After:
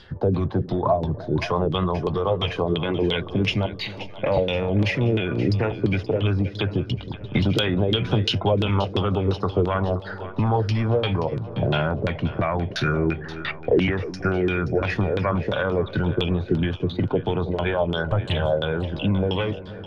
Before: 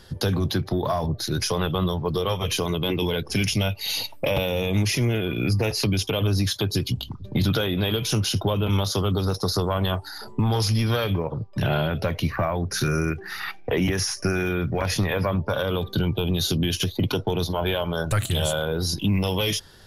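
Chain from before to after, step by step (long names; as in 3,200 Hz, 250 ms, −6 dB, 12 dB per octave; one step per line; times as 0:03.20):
0:03.66–0:04.10: compressor whose output falls as the input rises −30 dBFS, ratio −0.5
auto-filter low-pass saw down 2.9 Hz 320–3,800 Hz
echo with a time of its own for lows and highs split 580 Hz, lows 313 ms, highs 527 ms, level −14 dB
0:07.34–0:08.29: multiband upward and downward compressor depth 100%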